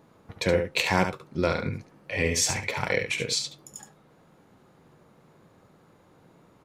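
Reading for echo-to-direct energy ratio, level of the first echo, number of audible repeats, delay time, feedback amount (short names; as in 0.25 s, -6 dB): -7.0 dB, -7.0 dB, 1, 71 ms, no steady repeat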